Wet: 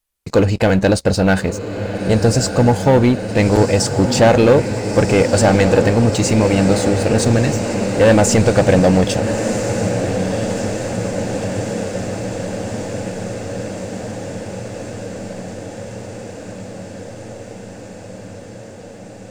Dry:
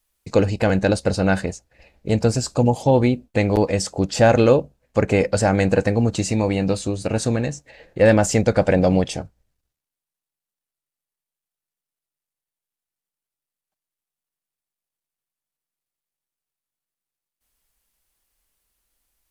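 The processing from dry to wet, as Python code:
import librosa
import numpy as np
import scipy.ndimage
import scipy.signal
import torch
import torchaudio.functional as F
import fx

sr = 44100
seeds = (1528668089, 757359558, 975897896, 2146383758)

p1 = fx.leveller(x, sr, passes=2)
p2 = p1 + fx.echo_diffused(p1, sr, ms=1336, feedback_pct=75, wet_db=-8, dry=0)
y = p2 * librosa.db_to_amplitude(-1.0)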